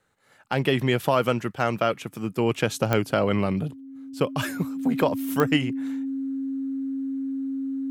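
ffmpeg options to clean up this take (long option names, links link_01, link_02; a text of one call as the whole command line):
ffmpeg -i in.wav -af "adeclick=threshold=4,bandreject=frequency=270:width=30" out.wav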